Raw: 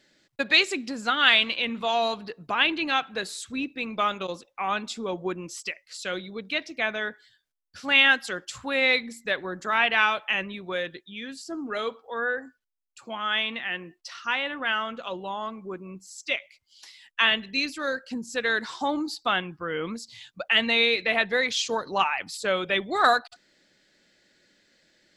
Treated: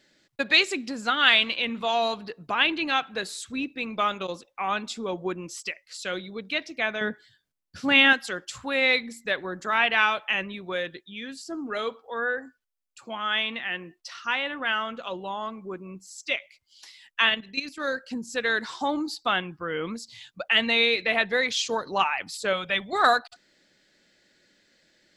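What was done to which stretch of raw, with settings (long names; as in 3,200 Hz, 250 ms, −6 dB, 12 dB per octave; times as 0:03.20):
0:07.01–0:08.13: parametric band 150 Hz +12.5 dB 2.7 octaves
0:17.29–0:17.80: output level in coarse steps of 12 dB
0:22.53–0:22.93: parametric band 360 Hz −11.5 dB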